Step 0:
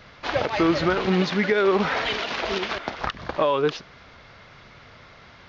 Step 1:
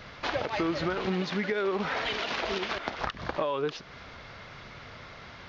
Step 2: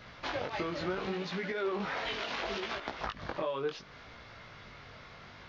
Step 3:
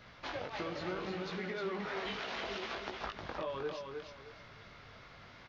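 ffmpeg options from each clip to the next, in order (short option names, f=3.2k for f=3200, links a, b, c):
-af "acompressor=threshold=-32dB:ratio=3,volume=2dB"
-af "flanger=delay=17:depth=5.7:speed=0.7,volume=-2dB"
-af "aecho=1:1:310|620|930|1240:0.562|0.157|0.0441|0.0123,volume=-5dB"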